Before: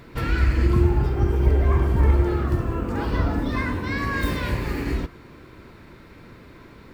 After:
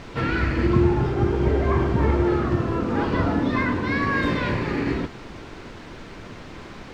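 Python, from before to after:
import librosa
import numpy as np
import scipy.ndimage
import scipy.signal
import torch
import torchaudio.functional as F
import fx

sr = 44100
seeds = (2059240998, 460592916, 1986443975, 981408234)

y = scipy.signal.sosfilt(scipy.signal.butter(2, 120.0, 'highpass', fs=sr, output='sos'), x)
y = fx.dmg_noise_colour(y, sr, seeds[0], colour='pink', level_db=-44.0)
y = fx.air_absorb(y, sr, metres=150.0)
y = F.gain(torch.from_numpy(y), 4.5).numpy()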